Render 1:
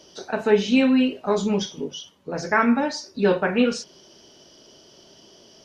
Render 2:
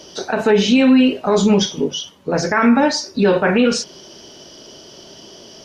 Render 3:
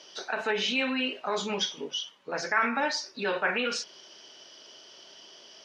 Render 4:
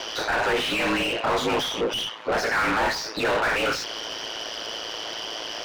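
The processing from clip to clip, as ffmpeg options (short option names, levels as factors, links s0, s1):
-af "alimiter=level_in=5.62:limit=0.891:release=50:level=0:latency=1,volume=0.596"
-af "bandpass=f=2200:t=q:w=0.7:csg=0,volume=0.531"
-filter_complex "[0:a]aeval=exprs='val(0)*sin(2*PI*55*n/s)':c=same,asplit=2[s0][s1];[s1]highpass=f=720:p=1,volume=70.8,asoftclip=type=tanh:threshold=0.2[s2];[s0][s2]amix=inputs=2:normalize=0,lowpass=f=1600:p=1,volume=0.501"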